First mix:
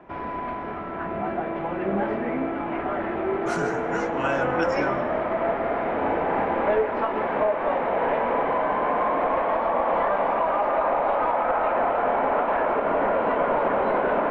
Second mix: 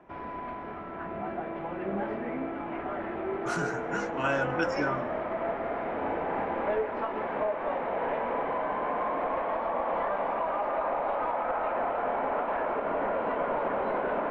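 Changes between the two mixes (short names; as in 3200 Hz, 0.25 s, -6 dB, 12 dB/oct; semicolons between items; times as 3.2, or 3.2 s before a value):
speech: send -8.0 dB; background -7.0 dB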